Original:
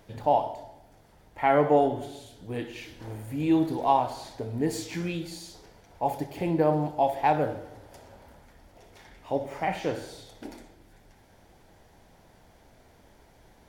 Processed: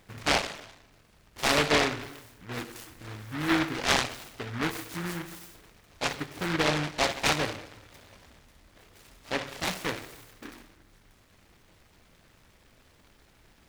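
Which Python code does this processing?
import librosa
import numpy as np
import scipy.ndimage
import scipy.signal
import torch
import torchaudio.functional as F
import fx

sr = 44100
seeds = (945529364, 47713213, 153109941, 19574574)

y = fx.noise_mod_delay(x, sr, seeds[0], noise_hz=1400.0, depth_ms=0.33)
y = y * librosa.db_to_amplitude(-3.0)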